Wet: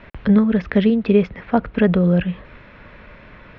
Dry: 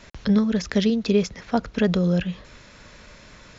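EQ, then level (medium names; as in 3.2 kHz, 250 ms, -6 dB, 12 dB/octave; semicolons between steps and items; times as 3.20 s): low-pass 2.7 kHz 24 dB/octave; +5.0 dB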